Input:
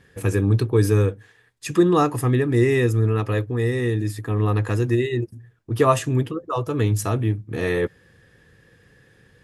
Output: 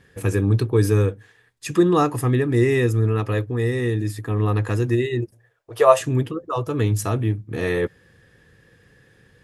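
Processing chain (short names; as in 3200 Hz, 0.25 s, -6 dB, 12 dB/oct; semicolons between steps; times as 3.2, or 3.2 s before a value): 5.31–6.01 resonant low shelf 370 Hz -14 dB, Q 3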